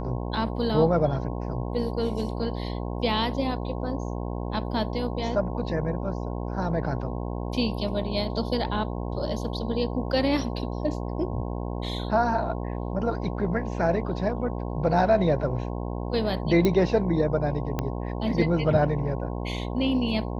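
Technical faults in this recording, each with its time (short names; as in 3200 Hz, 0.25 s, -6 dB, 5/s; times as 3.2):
buzz 60 Hz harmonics 18 -31 dBFS
16.65 pop -11 dBFS
17.79 pop -13 dBFS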